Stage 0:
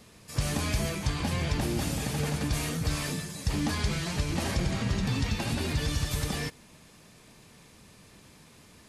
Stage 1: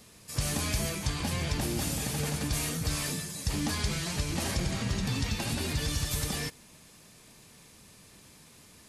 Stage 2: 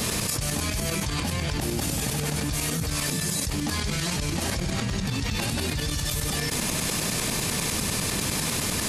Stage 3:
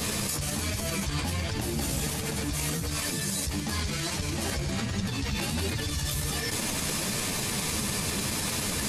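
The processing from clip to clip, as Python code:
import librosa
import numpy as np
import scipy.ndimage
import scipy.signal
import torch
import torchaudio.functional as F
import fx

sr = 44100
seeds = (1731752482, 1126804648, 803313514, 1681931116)

y1 = fx.high_shelf(x, sr, hz=4800.0, db=8.0)
y1 = F.gain(torch.from_numpy(y1), -2.5).numpy()
y2 = fx.tremolo_shape(y1, sr, shape='saw_up', hz=10.0, depth_pct=75)
y2 = fx.env_flatten(y2, sr, amount_pct=100)
y3 = fx.chorus_voices(y2, sr, voices=2, hz=1.3, base_ms=12, depth_ms=3.0, mix_pct=40)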